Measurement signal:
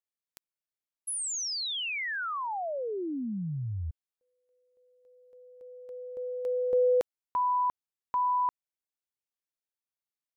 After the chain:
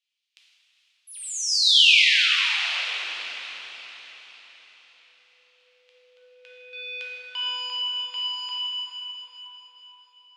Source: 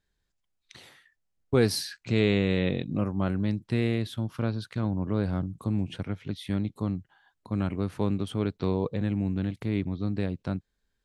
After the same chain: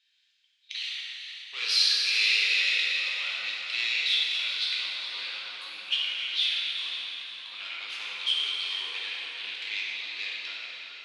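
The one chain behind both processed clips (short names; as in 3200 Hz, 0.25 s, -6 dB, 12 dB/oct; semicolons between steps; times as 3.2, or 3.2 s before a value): overdrive pedal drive 26 dB, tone 3600 Hz, clips at -9 dBFS; ladder band-pass 2900 Hz, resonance 55%; resonant high shelf 2700 Hz +7 dB, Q 1.5; on a send: diffused feedback echo 0.451 s, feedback 48%, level -9 dB; on the sum: plate-style reverb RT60 3.4 s, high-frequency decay 0.65×, DRR -6 dB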